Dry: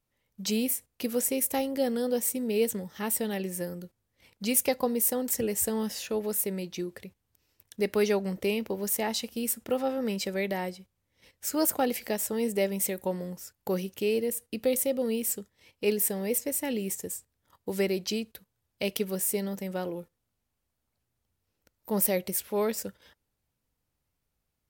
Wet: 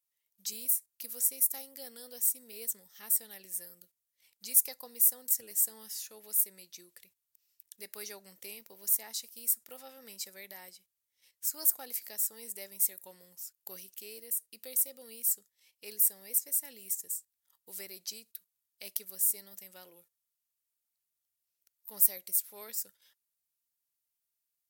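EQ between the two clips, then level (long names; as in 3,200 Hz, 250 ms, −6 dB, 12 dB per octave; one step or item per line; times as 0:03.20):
first-order pre-emphasis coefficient 0.97
dynamic equaliser 2,900 Hz, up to −8 dB, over −58 dBFS, Q 2.3
−1.0 dB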